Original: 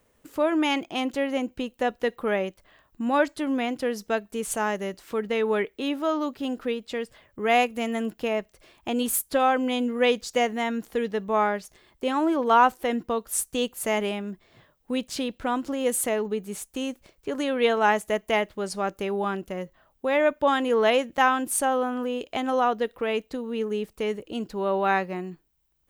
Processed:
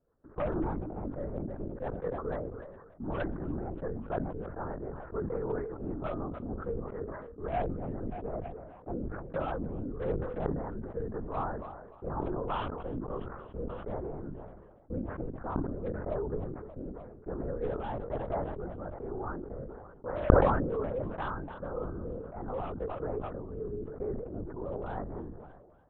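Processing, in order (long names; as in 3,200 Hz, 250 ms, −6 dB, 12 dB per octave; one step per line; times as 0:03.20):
one-sided soft clipper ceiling −12.5 dBFS
noise gate with hold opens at −59 dBFS
Butterworth low-pass 1,500 Hz 48 dB per octave
in parallel at 0 dB: speech leveller within 4 dB 2 s
on the sum: hard clipping −11 dBFS, distortion −21 dB
rotating-speaker cabinet horn 6.7 Hz, later 1 Hz, at 0:10.11
on a send: feedback echo with a high-pass in the loop 294 ms, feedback 54%, high-pass 220 Hz, level −23 dB
on the sum: linear-prediction vocoder at 8 kHz whisper
level that may fall only so fast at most 41 dB per second
level −14 dB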